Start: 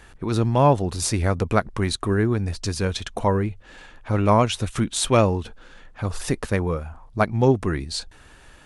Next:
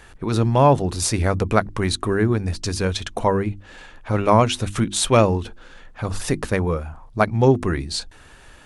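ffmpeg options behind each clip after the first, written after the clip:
-af "bandreject=f=50:t=h:w=6,bandreject=f=100:t=h:w=6,bandreject=f=150:t=h:w=6,bandreject=f=200:t=h:w=6,bandreject=f=250:t=h:w=6,bandreject=f=300:t=h:w=6,bandreject=f=350:t=h:w=6,volume=2.5dB"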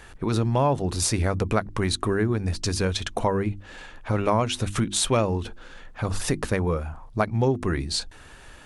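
-af "acompressor=threshold=-21dB:ratio=2.5"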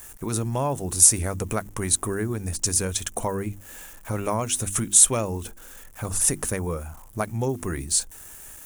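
-af "aeval=exprs='val(0)*gte(abs(val(0)),0.00422)':c=same,aexciter=amount=9:drive=3.3:freq=6.3k,volume=-4dB"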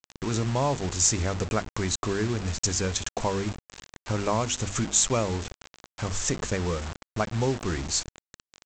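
-af "aeval=exprs='val(0)+0.00501*(sin(2*PI*50*n/s)+sin(2*PI*2*50*n/s)/2+sin(2*PI*3*50*n/s)/3+sin(2*PI*4*50*n/s)/4+sin(2*PI*5*50*n/s)/5)':c=same,aresample=16000,acrusher=bits=5:mix=0:aa=0.000001,aresample=44100"

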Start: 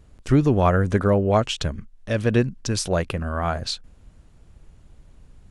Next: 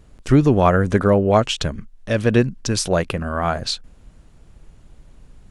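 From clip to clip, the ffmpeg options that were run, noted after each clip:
-af "equalizer=f=80:t=o:w=0.77:g=-5,volume=4dB"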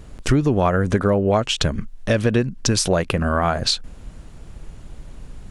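-af "acompressor=threshold=-25dB:ratio=4,volume=8.5dB"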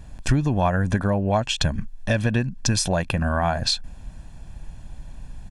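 -af "aecho=1:1:1.2:0.58,volume=-4dB"

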